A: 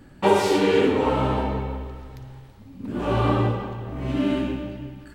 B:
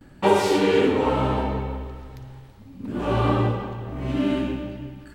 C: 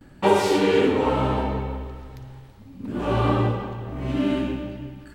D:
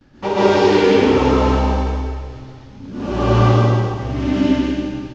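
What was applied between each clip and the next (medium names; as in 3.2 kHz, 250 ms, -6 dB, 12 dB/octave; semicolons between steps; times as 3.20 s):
gate with hold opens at -44 dBFS
no audible change
CVSD coder 32 kbps; delay 191 ms -7 dB; reverberation RT60 1.1 s, pre-delay 113 ms, DRR -8 dB; trim -3 dB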